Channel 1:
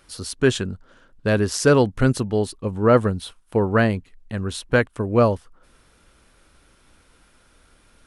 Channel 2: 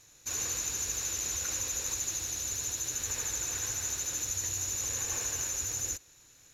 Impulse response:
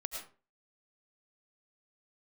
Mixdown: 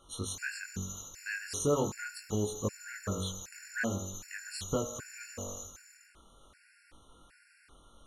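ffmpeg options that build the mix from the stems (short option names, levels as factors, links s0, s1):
-filter_complex "[0:a]bandreject=f=47.28:t=h:w=4,bandreject=f=94.56:t=h:w=4,bandreject=f=141.84:t=h:w=4,bandreject=f=189.12:t=h:w=4,bandreject=f=236.4:t=h:w=4,bandreject=f=283.68:t=h:w=4,bandreject=f=330.96:t=h:w=4,bandreject=f=378.24:t=h:w=4,bandreject=f=425.52:t=h:w=4,bandreject=f=472.8:t=h:w=4,bandreject=f=520.08:t=h:w=4,bandreject=f=567.36:t=h:w=4,bandreject=f=614.64:t=h:w=4,bandreject=f=661.92:t=h:w=4,bandreject=f=709.2:t=h:w=4,bandreject=f=756.48:t=h:w=4,bandreject=f=803.76:t=h:w=4,bandreject=f=851.04:t=h:w=4,bandreject=f=898.32:t=h:w=4,bandreject=f=945.6:t=h:w=4,bandreject=f=992.88:t=h:w=4,bandreject=f=1040.16:t=h:w=4,bandreject=f=1087.44:t=h:w=4,bandreject=f=1134.72:t=h:w=4,bandreject=f=1182:t=h:w=4,bandreject=f=1229.28:t=h:w=4,bandreject=f=1276.56:t=h:w=4,bandreject=f=1323.84:t=h:w=4,bandreject=f=1371.12:t=h:w=4,bandreject=f=1418.4:t=h:w=4,bandreject=f=1465.68:t=h:w=4,bandreject=f=1512.96:t=h:w=4,bandreject=f=1560.24:t=h:w=4,bandreject=f=1607.52:t=h:w=4,bandreject=f=1654.8:t=h:w=4,acompressor=threshold=0.0398:ratio=3,volume=0.944,asplit=3[s0][s1][s2];[s1]volume=0.158[s3];[1:a]volume=0.299,asplit=2[s4][s5];[s5]volume=0.596[s6];[s2]apad=whole_len=288319[s7];[s4][s7]sidechaingate=range=0.0891:threshold=0.00282:ratio=16:detection=peak[s8];[2:a]atrim=start_sample=2205[s9];[s3][s6]amix=inputs=2:normalize=0[s10];[s10][s9]afir=irnorm=-1:irlink=0[s11];[s0][s8][s11]amix=inputs=3:normalize=0,equalizer=f=1500:t=o:w=1.6:g=4,flanger=delay=19.5:depth=2.2:speed=0.42,afftfilt=real='re*gt(sin(2*PI*1.3*pts/sr)*(1-2*mod(floor(b*sr/1024/1400),2)),0)':imag='im*gt(sin(2*PI*1.3*pts/sr)*(1-2*mod(floor(b*sr/1024/1400),2)),0)':win_size=1024:overlap=0.75"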